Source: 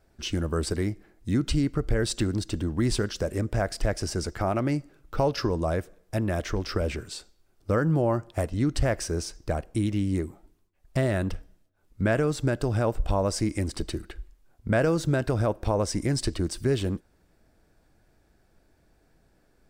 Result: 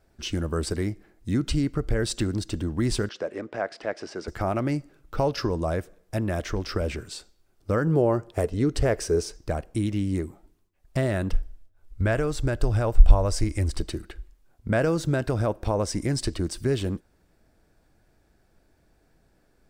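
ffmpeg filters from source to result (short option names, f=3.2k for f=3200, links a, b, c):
-filter_complex "[0:a]asettb=1/sr,asplit=3[a][b][c];[a]atrim=end=3.094[d];[b]atrim=start=3.09:end=4.28,asetpts=PTS-STARTPTS,afade=t=in:d=0.004:c=qsin,afade=t=out:st=1.186:d=0.004:c=qsin,highpass=340,lowpass=3.3k[e];[c]atrim=start=4.276[f];[d][e]acrossfade=d=0.004:c1=hsin:c2=qsin[g];[g][f]acrossfade=d=0.004:c1=qsin:c2=hsin,asettb=1/sr,asplit=3[h][i][j];[h]atrim=end=7.874[k];[i]atrim=start=7.87:end=9.36,asetpts=PTS-STARTPTS,afade=t=in:d=0.004:c=qsin,afade=t=out:st=1.486:d=0.004:c=qsin,equalizer=f=430:w=4:g=11.5[l];[j]atrim=start=9.356[m];[k][l]acrossfade=d=0.004:c1=hsin:c2=qsin[n];[n][m]acrossfade=d=0.004:c1=qsin:c2=hsin,asplit=3[o][p][q];[o]afade=t=out:st=11.33:d=0.02[r];[p]asubboost=boost=7.5:cutoff=61,afade=t=in:st=11.33:d=0.02,afade=t=out:st=13.79:d=0.02[s];[q]afade=t=in:st=13.79:d=0.02[t];[r][s][t]amix=inputs=3:normalize=0"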